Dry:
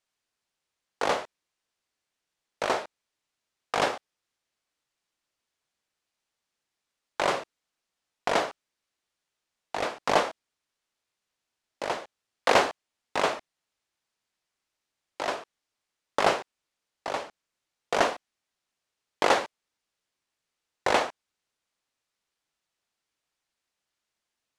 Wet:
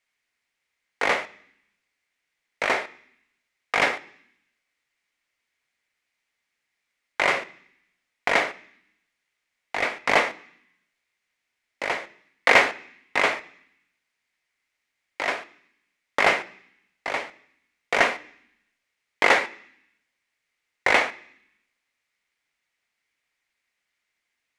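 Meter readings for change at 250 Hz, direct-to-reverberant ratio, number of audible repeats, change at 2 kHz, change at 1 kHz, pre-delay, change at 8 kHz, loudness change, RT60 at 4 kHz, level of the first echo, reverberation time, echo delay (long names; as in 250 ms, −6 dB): +0.5 dB, 11.5 dB, no echo audible, +10.0 dB, +1.5 dB, 3 ms, +0.5 dB, +5.0 dB, 0.85 s, no echo audible, 0.65 s, no echo audible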